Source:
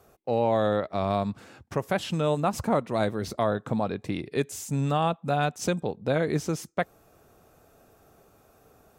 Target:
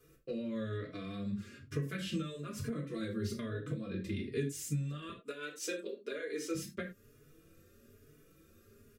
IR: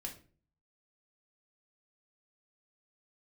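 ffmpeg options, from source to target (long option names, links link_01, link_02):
-filter_complex "[0:a]asettb=1/sr,asplit=3[link_01][link_02][link_03];[link_01]atrim=end=5.094[link_04];[link_02]atrim=start=5.09:end=6.55,asetpts=PTS-STARTPTS,afade=type=in:duration=0.004:curve=qsin,afade=type=out:start_time=1.456:duration=0.004:curve=qsin,highpass=frequency=380:width=0.5412,highpass=frequency=380:width=1.3066[link_05];[link_03]atrim=start=6.546[link_06];[link_04][link_05]acrossfade=duration=0.004:curve1=hsin:curve2=qsin[link_07];[link_07][link_06]acrossfade=duration=0.004:curve1=qsin:curve2=hsin[link_08];[1:a]atrim=start_sample=2205,afade=type=out:start_time=0.15:duration=0.01,atrim=end_sample=7056[link_09];[link_08][link_09]afir=irnorm=-1:irlink=0,acompressor=threshold=-32dB:ratio=6,asuperstop=centerf=810:order=4:qfactor=0.96,asplit=2[link_10][link_11];[link_11]adelay=4.2,afreqshift=1.1[link_12];[link_10][link_12]amix=inputs=2:normalize=1,volume=2.5dB"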